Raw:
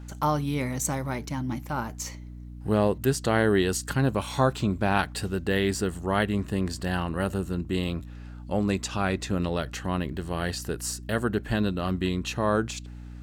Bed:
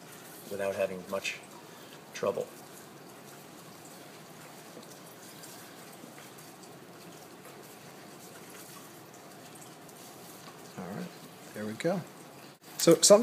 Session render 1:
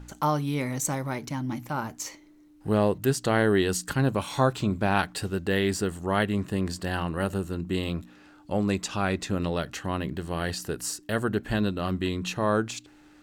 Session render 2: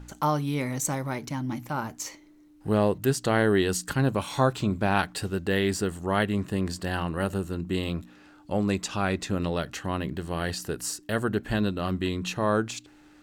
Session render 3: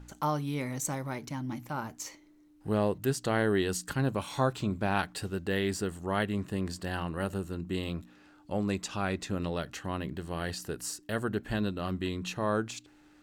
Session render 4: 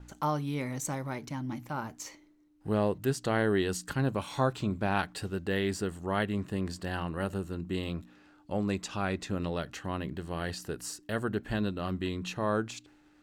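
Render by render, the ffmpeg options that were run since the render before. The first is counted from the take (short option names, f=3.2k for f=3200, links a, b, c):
-af "bandreject=f=60:t=h:w=4,bandreject=f=120:t=h:w=4,bandreject=f=180:t=h:w=4,bandreject=f=240:t=h:w=4"
-af anull
-af "volume=-5dB"
-af "agate=range=-33dB:threshold=-56dB:ratio=3:detection=peak,highshelf=f=6.7k:g=-4.5"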